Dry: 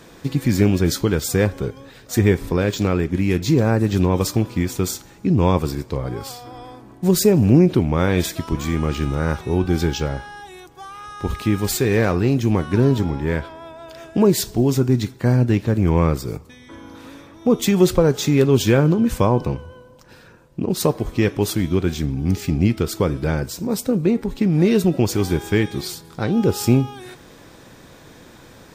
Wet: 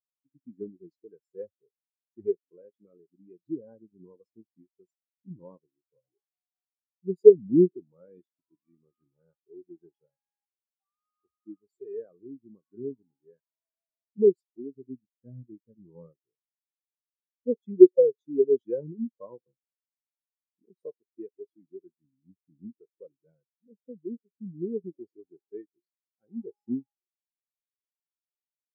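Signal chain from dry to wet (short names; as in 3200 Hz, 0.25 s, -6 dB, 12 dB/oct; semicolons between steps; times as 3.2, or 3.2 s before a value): block floating point 3-bit; HPF 410 Hz 6 dB/oct; spectral expander 4:1; gain +3 dB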